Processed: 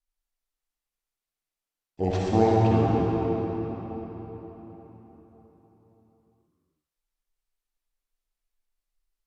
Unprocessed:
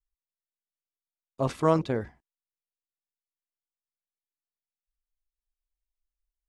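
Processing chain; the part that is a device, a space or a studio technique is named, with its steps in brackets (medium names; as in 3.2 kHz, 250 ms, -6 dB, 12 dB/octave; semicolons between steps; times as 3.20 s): slowed and reverbed (tape speed -30%; reverberation RT60 4.5 s, pre-delay 49 ms, DRR -4 dB)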